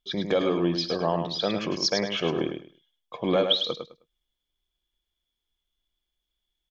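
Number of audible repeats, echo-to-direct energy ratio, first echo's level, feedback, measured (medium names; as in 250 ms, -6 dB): 3, -6.5 dB, -6.5 dB, 21%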